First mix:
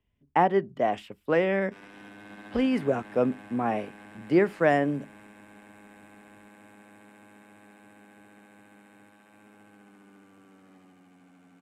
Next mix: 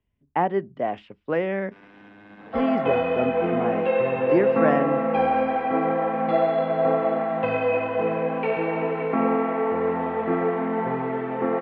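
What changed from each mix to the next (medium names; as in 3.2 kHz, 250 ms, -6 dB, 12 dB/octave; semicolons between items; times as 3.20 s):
second sound: unmuted; master: add distance through air 220 m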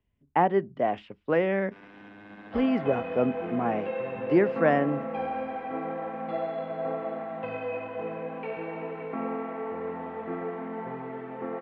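second sound -10.5 dB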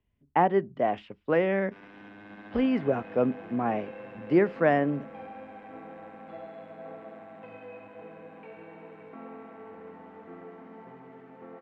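second sound -12.0 dB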